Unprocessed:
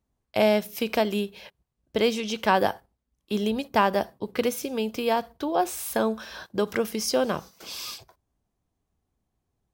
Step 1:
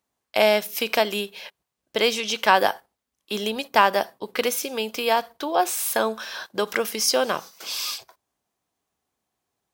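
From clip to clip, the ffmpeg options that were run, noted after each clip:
-af "highpass=f=910:p=1,volume=7.5dB"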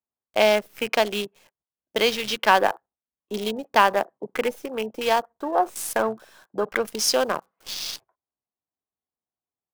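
-filter_complex "[0:a]afwtdn=0.0282,acrossover=split=110|1800[a][b][c];[c]acrusher=bits=6:dc=4:mix=0:aa=0.000001[d];[a][b][d]amix=inputs=3:normalize=0"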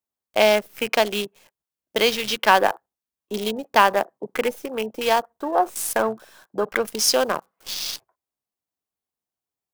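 -af "highshelf=f=8k:g=4,volume=1.5dB"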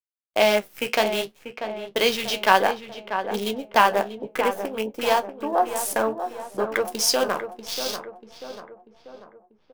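-filter_complex "[0:a]agate=range=-23dB:threshold=-49dB:ratio=16:detection=peak,flanger=delay=8.4:depth=8.1:regen=-54:speed=0.61:shape=triangular,asplit=2[a][b];[b]adelay=640,lowpass=f=1.7k:p=1,volume=-8.5dB,asplit=2[c][d];[d]adelay=640,lowpass=f=1.7k:p=1,volume=0.53,asplit=2[e][f];[f]adelay=640,lowpass=f=1.7k:p=1,volume=0.53,asplit=2[g][h];[h]adelay=640,lowpass=f=1.7k:p=1,volume=0.53,asplit=2[i][j];[j]adelay=640,lowpass=f=1.7k:p=1,volume=0.53,asplit=2[k][l];[l]adelay=640,lowpass=f=1.7k:p=1,volume=0.53[m];[c][e][g][i][k][m]amix=inputs=6:normalize=0[n];[a][n]amix=inputs=2:normalize=0,volume=2.5dB"

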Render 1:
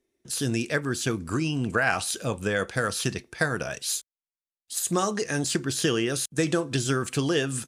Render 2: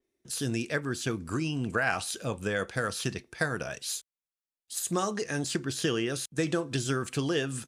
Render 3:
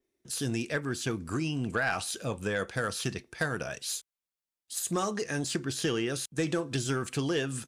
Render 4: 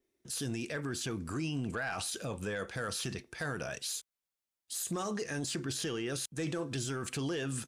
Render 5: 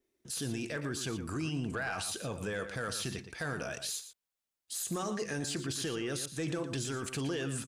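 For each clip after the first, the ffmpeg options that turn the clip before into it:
-af "adynamicequalizer=threshold=0.00794:dfrequency=5700:dqfactor=0.7:tfrequency=5700:tqfactor=0.7:attack=5:release=100:ratio=0.375:range=2:mode=cutabove:tftype=highshelf,volume=-4dB"
-af "asoftclip=type=tanh:threshold=-18.5dB"
-af "alimiter=level_in=4dB:limit=-24dB:level=0:latency=1:release=21,volume=-4dB"
-filter_complex "[0:a]asplit=2[a][b];[b]adelay=116.6,volume=-10dB,highshelf=f=4k:g=-2.62[c];[a][c]amix=inputs=2:normalize=0"

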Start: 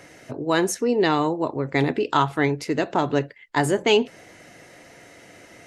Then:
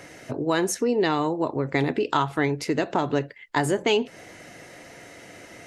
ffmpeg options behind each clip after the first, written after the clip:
-af "acompressor=threshold=-25dB:ratio=2,volume=2.5dB"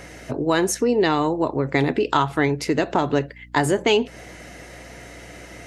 -af "aeval=exprs='val(0)+0.00355*(sin(2*PI*60*n/s)+sin(2*PI*2*60*n/s)/2+sin(2*PI*3*60*n/s)/3+sin(2*PI*4*60*n/s)/4+sin(2*PI*5*60*n/s)/5)':c=same,volume=3.5dB"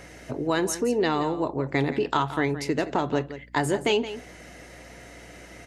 -af "aecho=1:1:171:0.224,volume=-5dB"

